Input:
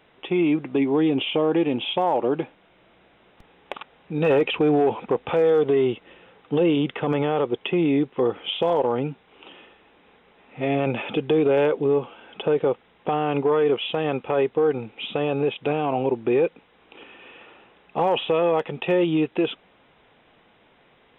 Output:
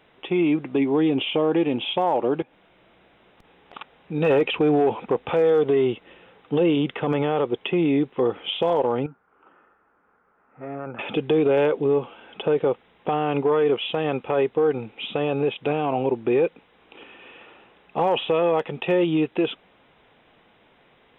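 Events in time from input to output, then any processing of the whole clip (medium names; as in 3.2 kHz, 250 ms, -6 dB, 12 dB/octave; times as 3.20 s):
2.42–3.73 s: compression, threshold -49 dBFS
9.06–10.99 s: four-pole ladder low-pass 1.5 kHz, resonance 70%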